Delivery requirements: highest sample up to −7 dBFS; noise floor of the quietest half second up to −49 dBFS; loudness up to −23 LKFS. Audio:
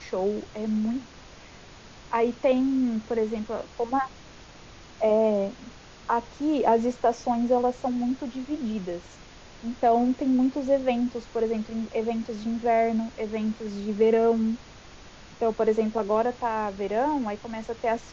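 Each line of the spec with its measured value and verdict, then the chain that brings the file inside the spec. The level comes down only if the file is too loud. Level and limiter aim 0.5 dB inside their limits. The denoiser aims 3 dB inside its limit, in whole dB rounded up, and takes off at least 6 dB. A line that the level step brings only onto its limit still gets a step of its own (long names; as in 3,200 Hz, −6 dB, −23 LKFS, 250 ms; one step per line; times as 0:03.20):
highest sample −10.0 dBFS: in spec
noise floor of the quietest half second −47 dBFS: out of spec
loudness −26.5 LKFS: in spec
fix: broadband denoise 6 dB, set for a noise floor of −47 dBFS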